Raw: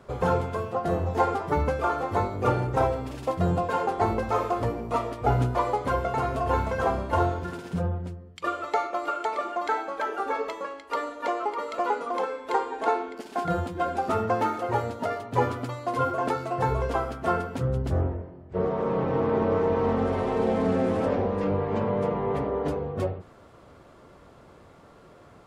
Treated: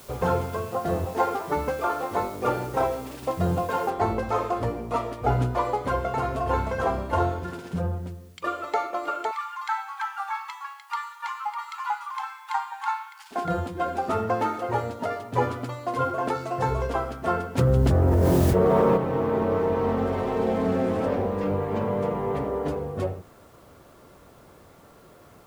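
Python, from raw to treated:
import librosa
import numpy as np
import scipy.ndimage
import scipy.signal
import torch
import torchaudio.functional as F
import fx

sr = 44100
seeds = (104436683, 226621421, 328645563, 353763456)

y = fx.peak_eq(x, sr, hz=90.0, db=-11.0, octaves=1.4, at=(1.05, 3.23))
y = fx.noise_floor_step(y, sr, seeds[0], at_s=3.9, before_db=-50, after_db=-64, tilt_db=0.0)
y = fx.brickwall_highpass(y, sr, low_hz=770.0, at=(9.31, 13.31))
y = fx.peak_eq(y, sr, hz=6100.0, db=4.5, octaves=1.1, at=(16.35, 16.87))
y = fx.env_flatten(y, sr, amount_pct=100, at=(17.57, 18.96), fade=0.02)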